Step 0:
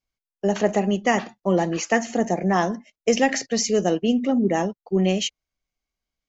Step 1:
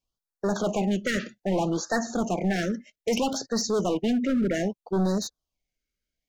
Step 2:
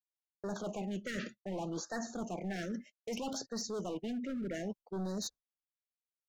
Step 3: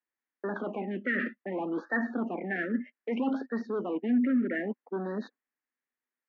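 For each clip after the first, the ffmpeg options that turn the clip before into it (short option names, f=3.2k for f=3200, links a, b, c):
-filter_complex "[0:a]acrossover=split=5500[a][b];[b]acompressor=threshold=-40dB:ratio=4:attack=1:release=60[c];[a][c]amix=inputs=2:normalize=0,volume=21dB,asoftclip=hard,volume=-21dB,afftfilt=real='re*(1-between(b*sr/1024,850*pow(2700/850,0.5+0.5*sin(2*PI*0.63*pts/sr))/1.41,850*pow(2700/850,0.5+0.5*sin(2*PI*0.63*pts/sr))*1.41))':imag='im*(1-between(b*sr/1024,850*pow(2700/850,0.5+0.5*sin(2*PI*0.63*pts/sr))/1.41,850*pow(2700/850,0.5+0.5*sin(2*PI*0.63*pts/sr))*1.41))':win_size=1024:overlap=0.75"
-af "agate=range=-33dB:threshold=-38dB:ratio=3:detection=peak,areverse,acompressor=threshold=-34dB:ratio=6,areverse,volume=-3dB"
-af "highpass=f=240:w=0.5412,highpass=f=240:w=1.3066,equalizer=f=250:t=q:w=4:g=10,equalizer=f=640:t=q:w=4:g=-5,equalizer=f=1.8k:t=q:w=4:g=9,lowpass=f=2.3k:w=0.5412,lowpass=f=2.3k:w=1.3066,volume=7dB"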